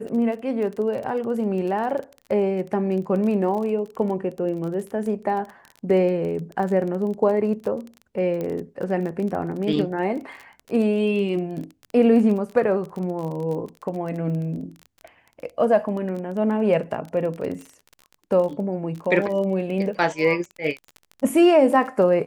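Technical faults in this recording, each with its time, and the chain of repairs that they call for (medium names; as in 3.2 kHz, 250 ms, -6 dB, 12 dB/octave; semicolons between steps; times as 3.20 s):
crackle 24 per s -30 dBFS
8.41 s: pop -17 dBFS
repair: de-click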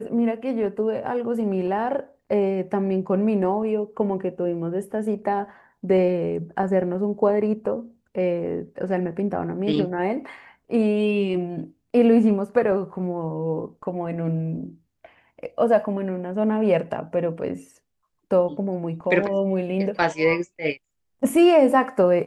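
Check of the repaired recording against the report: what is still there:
nothing left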